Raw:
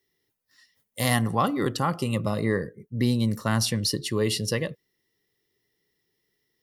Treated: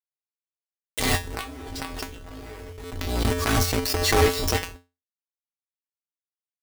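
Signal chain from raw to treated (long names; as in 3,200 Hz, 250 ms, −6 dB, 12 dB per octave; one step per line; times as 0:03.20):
sub-octave generator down 2 octaves, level +4 dB
low-pass filter 7,800 Hz 24 dB per octave
high-shelf EQ 2,300 Hz +3 dB
comb filter 2.6 ms, depth 93%
dynamic equaliser 270 Hz, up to +4 dB, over −32 dBFS, Q 0.76
0:01.15–0:03.25: downward compressor 10 to 1, threshold −18 dBFS, peak gain reduction 8.5 dB
log-companded quantiser 2 bits
tuned comb filter 88 Hz, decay 0.25 s, harmonics odd, mix 90%
background raised ahead of every attack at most 39 dB per second
level −3 dB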